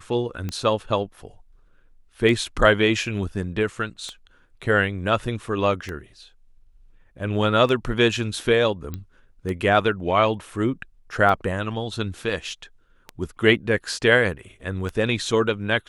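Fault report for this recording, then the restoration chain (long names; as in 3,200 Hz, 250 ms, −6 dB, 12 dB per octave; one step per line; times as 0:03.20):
scratch tick 33 1/3 rpm −16 dBFS
0:08.94: click −18 dBFS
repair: click removal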